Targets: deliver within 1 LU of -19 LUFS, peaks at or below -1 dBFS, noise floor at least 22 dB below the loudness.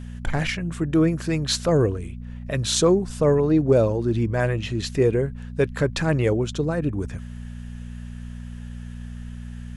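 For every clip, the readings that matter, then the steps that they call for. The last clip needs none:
hum 60 Hz; highest harmonic 240 Hz; hum level -33 dBFS; loudness -22.5 LUFS; peak level -6.0 dBFS; loudness target -19.0 LUFS
-> de-hum 60 Hz, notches 4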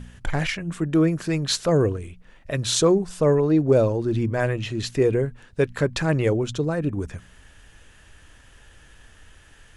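hum not found; loudness -22.5 LUFS; peak level -5.0 dBFS; loudness target -19.0 LUFS
-> trim +3.5 dB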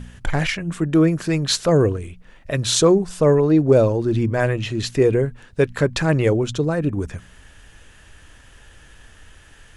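loudness -19.0 LUFS; peak level -1.5 dBFS; noise floor -48 dBFS

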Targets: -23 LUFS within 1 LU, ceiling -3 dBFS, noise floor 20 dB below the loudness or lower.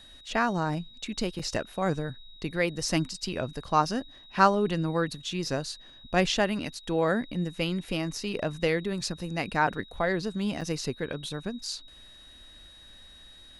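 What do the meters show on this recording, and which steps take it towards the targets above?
dropouts 2; longest dropout 4.5 ms; steady tone 3.8 kHz; tone level -50 dBFS; loudness -29.5 LUFS; peak level -7.0 dBFS; loudness target -23.0 LUFS
-> interpolate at 1.39/10.61 s, 4.5 ms; band-stop 3.8 kHz, Q 30; trim +6.5 dB; peak limiter -3 dBFS

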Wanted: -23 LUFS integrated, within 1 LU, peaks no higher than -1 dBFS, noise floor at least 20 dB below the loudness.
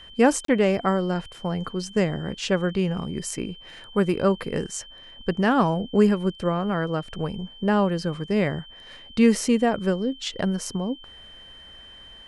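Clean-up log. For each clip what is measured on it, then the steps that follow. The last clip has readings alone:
dropouts 1; longest dropout 33 ms; steady tone 3.1 kHz; tone level -44 dBFS; loudness -24.5 LUFS; peak level -5.5 dBFS; loudness target -23.0 LUFS
-> interpolate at 0.45 s, 33 ms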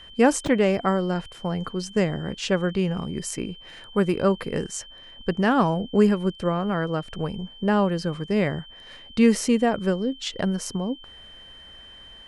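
dropouts 0; steady tone 3.1 kHz; tone level -44 dBFS
-> band-stop 3.1 kHz, Q 30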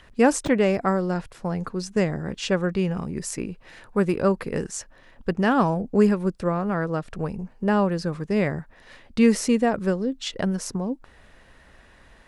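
steady tone not found; loudness -24.5 LUFS; peak level -5.0 dBFS; loudness target -23.0 LUFS
-> trim +1.5 dB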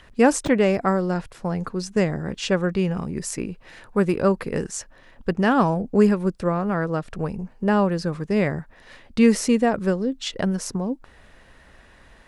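loudness -23.0 LUFS; peak level -3.5 dBFS; noise floor -51 dBFS

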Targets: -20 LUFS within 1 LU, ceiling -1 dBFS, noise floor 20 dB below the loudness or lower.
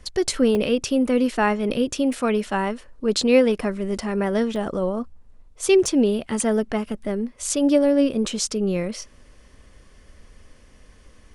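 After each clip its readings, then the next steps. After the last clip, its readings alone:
dropouts 4; longest dropout 1.1 ms; loudness -22.0 LUFS; peak level -4.5 dBFS; loudness target -20.0 LUFS
-> interpolate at 0.55/2.13/4.56/5.86 s, 1.1 ms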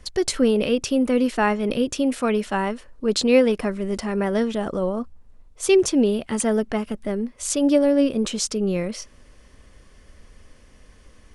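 dropouts 0; loudness -22.0 LUFS; peak level -4.5 dBFS; loudness target -20.0 LUFS
-> trim +2 dB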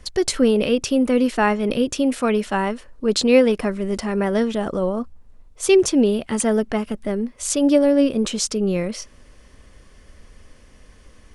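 loudness -20.0 LUFS; peak level -2.5 dBFS; noise floor -49 dBFS

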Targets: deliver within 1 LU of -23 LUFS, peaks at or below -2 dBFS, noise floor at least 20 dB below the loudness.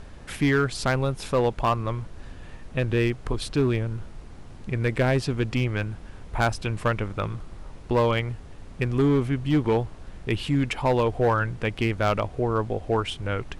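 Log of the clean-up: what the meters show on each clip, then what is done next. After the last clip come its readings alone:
clipped samples 1.2%; clipping level -15.0 dBFS; noise floor -43 dBFS; noise floor target -46 dBFS; loudness -25.5 LUFS; peak level -15.0 dBFS; loudness target -23.0 LUFS
-> clip repair -15 dBFS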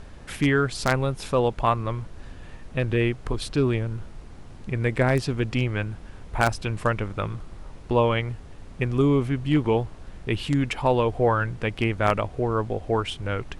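clipped samples 0.0%; noise floor -43 dBFS; noise floor target -45 dBFS
-> noise print and reduce 6 dB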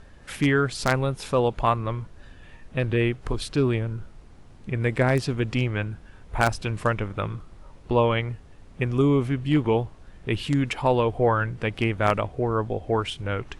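noise floor -48 dBFS; loudness -25.0 LUFS; peak level -6.0 dBFS; loudness target -23.0 LUFS
-> trim +2 dB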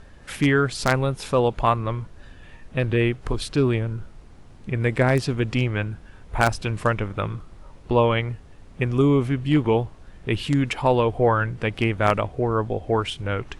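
loudness -23.0 LUFS; peak level -4.0 dBFS; noise floor -46 dBFS

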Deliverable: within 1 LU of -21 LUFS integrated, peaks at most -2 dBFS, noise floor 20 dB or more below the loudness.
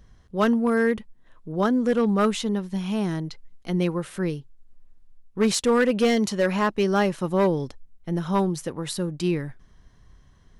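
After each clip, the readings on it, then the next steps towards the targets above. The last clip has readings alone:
clipped samples 0.9%; clipping level -14.0 dBFS; loudness -24.0 LUFS; peak level -14.0 dBFS; loudness target -21.0 LUFS
-> clip repair -14 dBFS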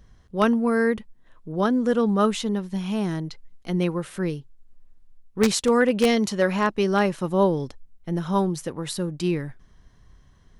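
clipped samples 0.0%; loudness -23.5 LUFS; peak level -5.0 dBFS; loudness target -21.0 LUFS
-> trim +2.5 dB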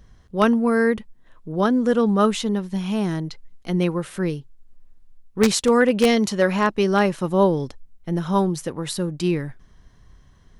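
loudness -21.0 LUFS; peak level -2.5 dBFS; noise floor -53 dBFS

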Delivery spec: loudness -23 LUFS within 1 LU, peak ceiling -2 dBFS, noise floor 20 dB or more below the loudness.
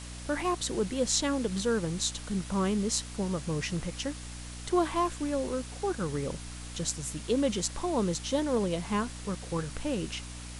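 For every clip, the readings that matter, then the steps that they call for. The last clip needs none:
hum 60 Hz; highest harmonic 300 Hz; hum level -41 dBFS; noise floor -42 dBFS; noise floor target -51 dBFS; loudness -31.0 LUFS; peak level -11.0 dBFS; loudness target -23.0 LUFS
-> de-hum 60 Hz, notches 5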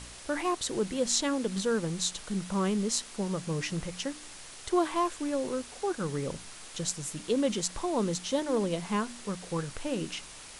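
hum not found; noise floor -47 dBFS; noise floor target -52 dBFS
-> noise reduction 6 dB, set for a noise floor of -47 dBFS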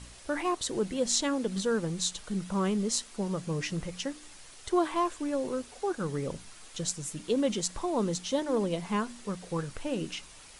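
noise floor -51 dBFS; noise floor target -52 dBFS
-> noise reduction 6 dB, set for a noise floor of -51 dBFS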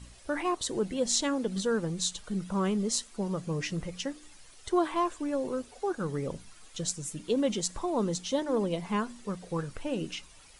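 noise floor -54 dBFS; loudness -31.5 LUFS; peak level -11.0 dBFS; loudness target -23.0 LUFS
-> trim +8.5 dB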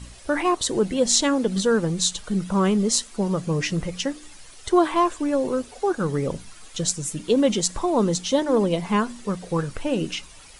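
loudness -23.0 LUFS; peak level -2.5 dBFS; noise floor -45 dBFS

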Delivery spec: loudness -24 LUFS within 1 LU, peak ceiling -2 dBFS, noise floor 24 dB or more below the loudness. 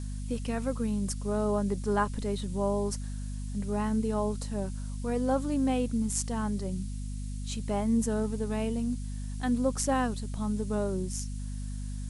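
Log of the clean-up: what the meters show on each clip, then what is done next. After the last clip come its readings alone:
hum 50 Hz; highest harmonic 250 Hz; hum level -33 dBFS; noise floor -36 dBFS; noise floor target -56 dBFS; loudness -31.5 LUFS; peak level -14.0 dBFS; loudness target -24.0 LUFS
-> hum notches 50/100/150/200/250 Hz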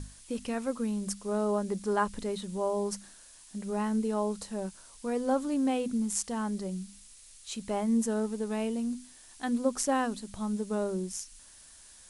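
hum not found; noise floor -54 dBFS; noise floor target -56 dBFS
-> noise reduction 6 dB, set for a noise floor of -54 dBFS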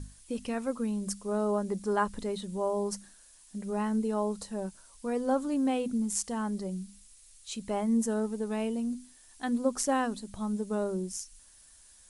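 noise floor -57 dBFS; loudness -32.0 LUFS; peak level -14.5 dBFS; loudness target -24.0 LUFS
-> trim +8 dB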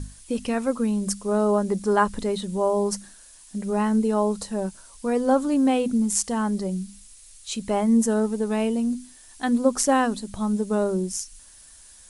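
loudness -24.0 LUFS; peak level -6.5 dBFS; noise floor -49 dBFS

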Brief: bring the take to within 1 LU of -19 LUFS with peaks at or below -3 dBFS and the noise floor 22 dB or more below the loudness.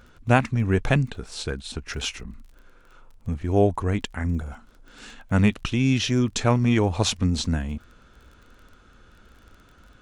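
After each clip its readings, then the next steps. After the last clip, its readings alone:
tick rate 26 per s; loudness -24.0 LUFS; peak level -3.5 dBFS; loudness target -19.0 LUFS
-> de-click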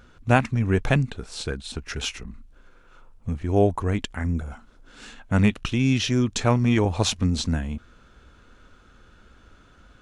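tick rate 0 per s; loudness -24.0 LUFS; peak level -3.5 dBFS; loudness target -19.0 LUFS
-> trim +5 dB; peak limiter -3 dBFS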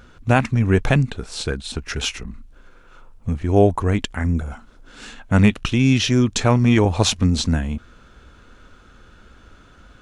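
loudness -19.5 LUFS; peak level -3.0 dBFS; noise floor -49 dBFS

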